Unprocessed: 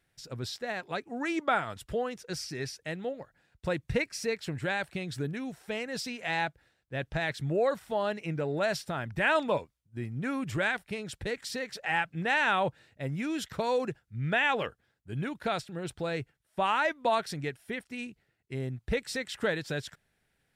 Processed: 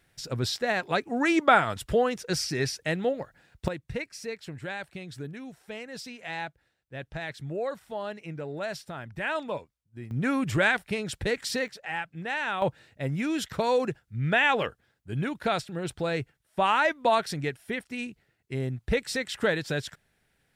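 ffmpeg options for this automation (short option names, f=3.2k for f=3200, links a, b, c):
-af "asetnsamples=n=441:p=0,asendcmd='3.68 volume volume -4.5dB;10.11 volume volume 6dB;11.68 volume volume -4dB;12.62 volume volume 4dB',volume=8dB"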